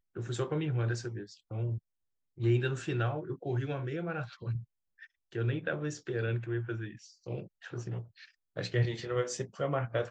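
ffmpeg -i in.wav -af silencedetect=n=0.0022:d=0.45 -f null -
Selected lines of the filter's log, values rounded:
silence_start: 1.79
silence_end: 2.37 | silence_duration: 0.59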